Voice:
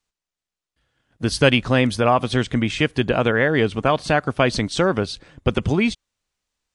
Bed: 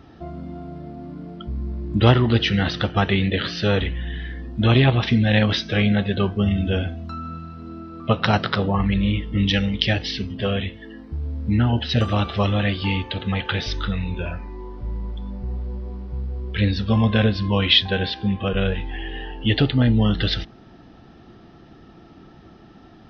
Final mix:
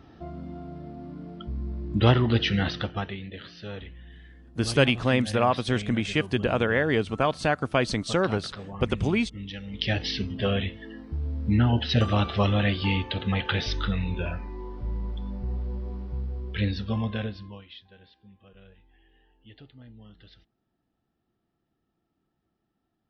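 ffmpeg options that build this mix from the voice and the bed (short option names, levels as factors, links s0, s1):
-filter_complex "[0:a]adelay=3350,volume=0.531[s0];[1:a]volume=3.55,afade=t=out:st=2.63:d=0.54:silence=0.211349,afade=t=in:st=9.65:d=0.41:silence=0.16788,afade=t=out:st=16.02:d=1.63:silence=0.0354813[s1];[s0][s1]amix=inputs=2:normalize=0"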